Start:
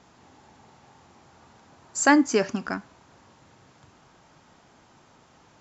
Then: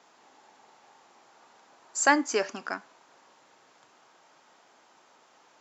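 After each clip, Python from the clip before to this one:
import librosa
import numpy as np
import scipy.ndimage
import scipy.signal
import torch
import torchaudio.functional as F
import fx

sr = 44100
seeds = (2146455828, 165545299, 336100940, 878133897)

y = scipy.signal.sosfilt(scipy.signal.butter(2, 440.0, 'highpass', fs=sr, output='sos'), x)
y = F.gain(torch.from_numpy(y), -1.5).numpy()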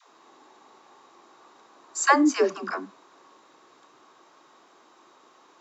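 y = fx.small_body(x, sr, hz=(340.0, 1100.0, 3800.0), ring_ms=20, db=10)
y = fx.dispersion(y, sr, late='lows', ms=125.0, hz=370.0)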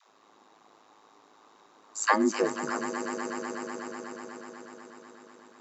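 y = x * np.sin(2.0 * np.pi * 53.0 * np.arange(len(x)) / sr)
y = fx.echo_swell(y, sr, ms=123, loudest=5, wet_db=-14.0)
y = F.gain(torch.from_numpy(y), -2.0).numpy()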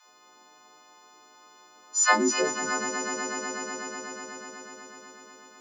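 y = fx.freq_snap(x, sr, grid_st=3)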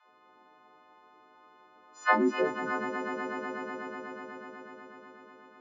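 y = fx.air_absorb(x, sr, metres=500.0)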